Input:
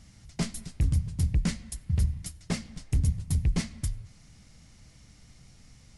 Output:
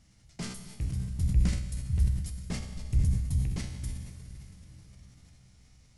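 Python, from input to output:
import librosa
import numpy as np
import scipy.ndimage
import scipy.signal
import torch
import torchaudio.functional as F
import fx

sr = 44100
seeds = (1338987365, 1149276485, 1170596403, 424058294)

y = fx.low_shelf(x, sr, hz=110.0, db=10.0, at=(1.1, 3.39))
y = fx.comb_fb(y, sr, f0_hz=63.0, decay_s=1.1, harmonics='all', damping=0.0, mix_pct=80)
y = fx.rev_plate(y, sr, seeds[0], rt60_s=4.7, hf_ratio=0.95, predelay_ms=105, drr_db=9.5)
y = fx.sustainer(y, sr, db_per_s=61.0)
y = F.gain(torch.from_numpy(y), 2.5).numpy()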